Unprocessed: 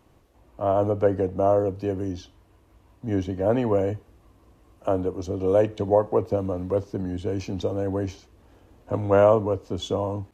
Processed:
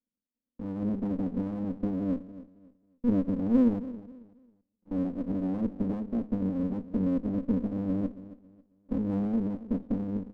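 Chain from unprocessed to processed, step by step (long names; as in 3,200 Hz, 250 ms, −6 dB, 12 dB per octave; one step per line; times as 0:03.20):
noise gate −47 dBFS, range −35 dB
in parallel at +2.5 dB: downward compressor, threshold −27 dBFS, peak gain reduction 14 dB
0:03.79–0:04.91: on the sum: tube saturation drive 35 dB, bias 0.5
flat-topped band-pass 230 Hz, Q 3.3
on a send: repeating echo 272 ms, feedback 28%, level −16 dB
on the sum: windowed peak hold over 33 samples
level +4 dB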